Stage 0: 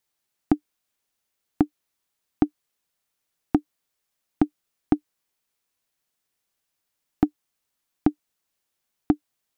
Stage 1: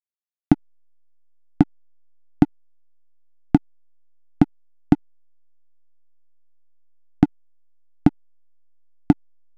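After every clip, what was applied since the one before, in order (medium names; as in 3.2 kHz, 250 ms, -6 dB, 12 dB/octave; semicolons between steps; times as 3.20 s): fifteen-band graphic EQ 160 Hz +7 dB, 400 Hz -9 dB, 1 kHz -8 dB; hysteresis with a dead band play -24.5 dBFS; trim +7.5 dB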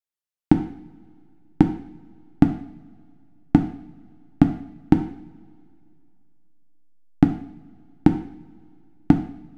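vibrato 4.5 Hz 85 cents; two-slope reverb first 0.6 s, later 2.5 s, from -20 dB, DRR 5.5 dB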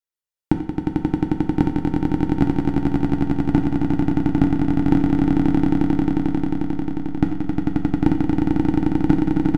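comb 2.1 ms, depth 34%; on a send: echo with a slow build-up 89 ms, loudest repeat 8, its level -3.5 dB; on the sum: trim -2 dB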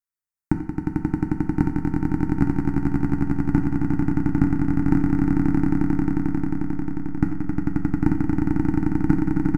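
static phaser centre 1.4 kHz, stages 4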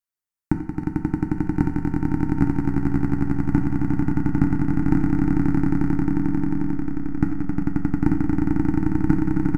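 chunks repeated in reverse 675 ms, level -13 dB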